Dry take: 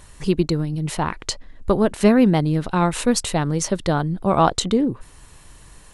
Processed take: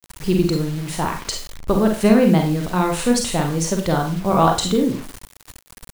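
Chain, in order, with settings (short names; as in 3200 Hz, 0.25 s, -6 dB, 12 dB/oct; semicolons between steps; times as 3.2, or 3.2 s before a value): Schroeder reverb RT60 0.36 s, combs from 33 ms, DRR 2 dB; bit-crush 6-bit; gain -1 dB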